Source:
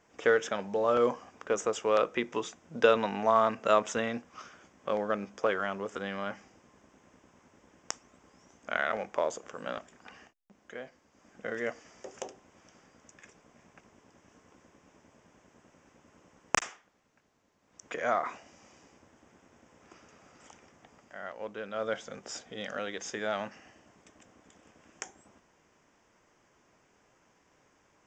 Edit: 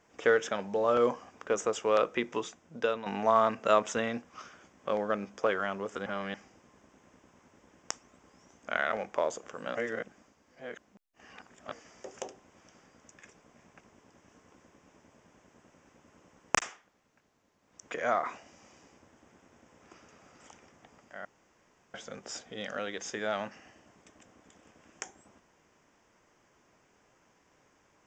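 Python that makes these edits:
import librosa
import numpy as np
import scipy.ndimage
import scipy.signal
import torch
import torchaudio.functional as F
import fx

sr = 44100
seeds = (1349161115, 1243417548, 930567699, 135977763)

y = fx.edit(x, sr, fx.fade_out_to(start_s=2.33, length_s=0.73, floor_db=-12.0),
    fx.reverse_span(start_s=6.06, length_s=0.28),
    fx.reverse_span(start_s=9.75, length_s=1.97),
    fx.room_tone_fill(start_s=21.25, length_s=0.69), tone=tone)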